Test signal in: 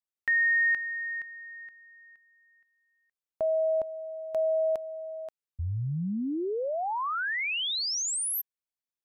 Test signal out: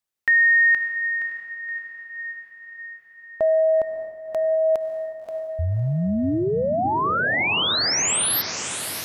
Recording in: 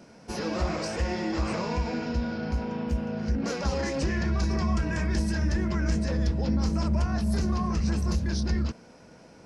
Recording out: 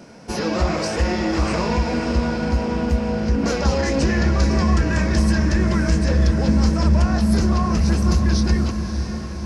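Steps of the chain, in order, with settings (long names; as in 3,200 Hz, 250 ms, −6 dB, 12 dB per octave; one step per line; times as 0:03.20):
feedback delay with all-pass diffusion 597 ms, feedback 62%, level −9 dB
level +8 dB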